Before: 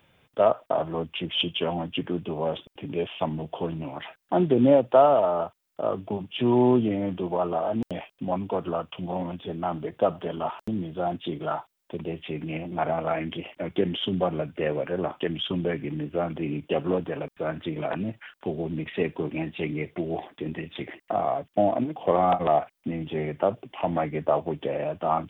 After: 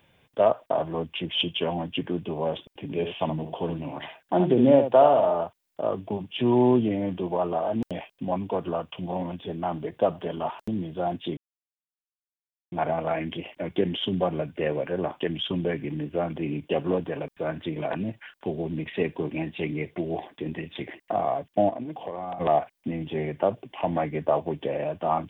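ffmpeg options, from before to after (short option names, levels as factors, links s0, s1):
-filter_complex "[0:a]asettb=1/sr,asplit=3[s0][s1][s2];[s0]atrim=end=2.844[s3];[s1]atrim=start=2.84:end=5.36,asetpts=PTS-STARTPTS,afade=t=in:d=0.004:c=qsin,afade=t=out:st=2.516:d=0.004:c=qsin,aecho=1:1:71:0.398,atrim=end_sample=111132[s4];[s2]atrim=start=5.356[s5];[s3][s4]acrossfade=d=0.004:c1=hsin:c2=qsin[s6];[s6][s5]acrossfade=d=0.004:c1=qsin:c2=hsin,asettb=1/sr,asplit=3[s7][s8][s9];[s7]atrim=end=21.694[s10];[s8]atrim=start=21.69:end=22.38,asetpts=PTS-STARTPTS,afade=t=in:d=0.004:c=qsin,afade=t=out:st=0.686:d=0.004:c=qsin,acompressor=threshold=0.0355:ratio=10:attack=3.2:release=140:knee=1:detection=peak[s11];[s9]atrim=start=22.376[s12];[s10][s11]acrossfade=d=0.004:c1=hsin:c2=qsin[s13];[s13][s12]acrossfade=d=0.004:c1=qsin:c2=hsin,asplit=3[s14][s15][s16];[s14]atrim=end=11.37,asetpts=PTS-STARTPTS,afade=t=out:st=11.366:d=0.004:c=hsin[s17];[s15]atrim=start=11.37:end=12.72,asetpts=PTS-STARTPTS,volume=0[s18];[s16]atrim=start=12.72,asetpts=PTS-STARTPTS,afade=t=in:d=0.004:c=hsin[s19];[s17][s18][s19]concat=n=3:v=0:a=1,bandreject=f=1300:w=8.4"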